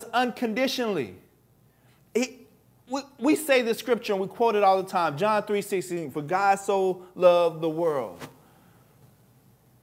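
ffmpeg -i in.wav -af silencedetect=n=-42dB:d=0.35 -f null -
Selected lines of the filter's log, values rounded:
silence_start: 1.17
silence_end: 2.15 | silence_duration: 0.98
silence_start: 2.42
silence_end: 2.90 | silence_duration: 0.48
silence_start: 8.32
silence_end: 9.83 | silence_duration: 1.51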